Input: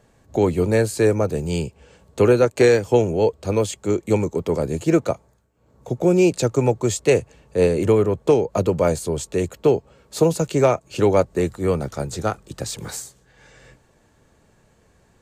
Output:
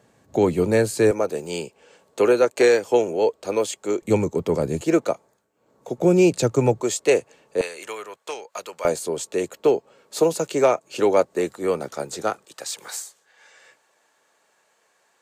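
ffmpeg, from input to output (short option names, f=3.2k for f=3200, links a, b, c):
-af "asetnsamples=n=441:p=0,asendcmd='1.11 highpass f 350;4.02 highpass f 99;4.81 highpass f 270;5.98 highpass f 97;6.81 highpass f 320;7.61 highpass f 1300;8.85 highpass f 310;12.45 highpass f 730',highpass=130"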